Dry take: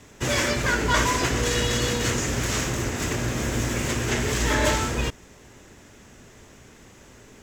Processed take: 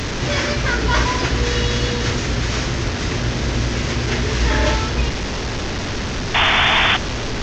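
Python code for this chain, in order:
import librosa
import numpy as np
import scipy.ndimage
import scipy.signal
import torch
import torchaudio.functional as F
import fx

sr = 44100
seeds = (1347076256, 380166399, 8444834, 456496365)

y = fx.delta_mod(x, sr, bps=32000, step_db=-21.5)
y = fx.spec_paint(y, sr, seeds[0], shape='noise', start_s=6.34, length_s=0.63, low_hz=630.0, high_hz=3600.0, level_db=-18.0)
y = fx.low_shelf(y, sr, hz=100.0, db=8.0)
y = y * librosa.db_to_amplitude(2.5)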